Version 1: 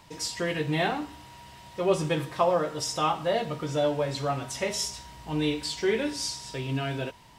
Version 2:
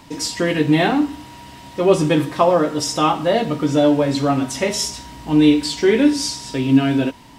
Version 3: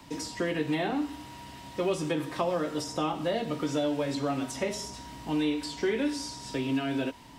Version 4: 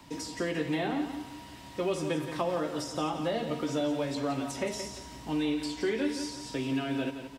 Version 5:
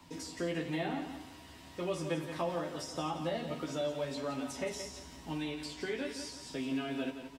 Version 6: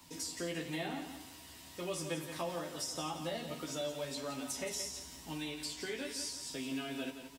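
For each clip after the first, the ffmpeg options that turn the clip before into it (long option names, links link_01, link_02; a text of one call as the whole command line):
ffmpeg -i in.wav -af "equalizer=frequency=270:width=3:gain=13,volume=8dB" out.wav
ffmpeg -i in.wav -filter_complex "[0:a]acrossover=split=89|320|680|1600[link_01][link_02][link_03][link_04][link_05];[link_01]acompressor=threshold=-47dB:ratio=4[link_06];[link_02]acompressor=threshold=-31dB:ratio=4[link_07];[link_03]acompressor=threshold=-25dB:ratio=4[link_08];[link_04]acompressor=threshold=-34dB:ratio=4[link_09];[link_05]acompressor=threshold=-33dB:ratio=4[link_10];[link_06][link_07][link_08][link_09][link_10]amix=inputs=5:normalize=0,volume=-6dB" out.wav
ffmpeg -i in.wav -af "aecho=1:1:173|346|519|692:0.335|0.117|0.041|0.0144,volume=-2dB" out.wav
ffmpeg -i in.wav -filter_complex "[0:a]asplit=2[link_01][link_02];[link_02]adelay=12,volume=-3dB[link_03];[link_01][link_03]amix=inputs=2:normalize=0,volume=-6dB" out.wav
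ffmpeg -i in.wav -af "crystalizer=i=3:c=0,volume=-4.5dB" out.wav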